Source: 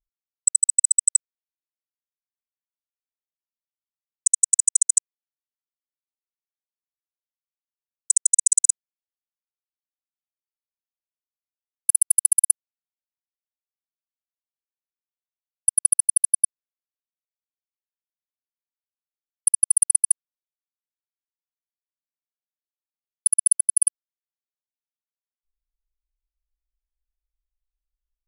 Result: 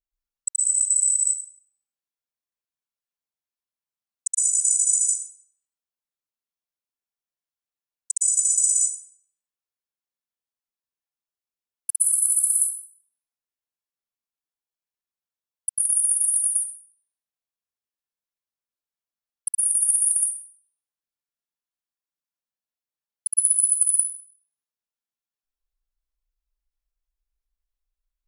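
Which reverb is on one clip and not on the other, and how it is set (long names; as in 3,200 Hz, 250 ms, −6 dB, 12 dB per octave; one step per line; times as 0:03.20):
dense smooth reverb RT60 0.69 s, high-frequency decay 0.7×, pre-delay 105 ms, DRR −8.5 dB
level −8.5 dB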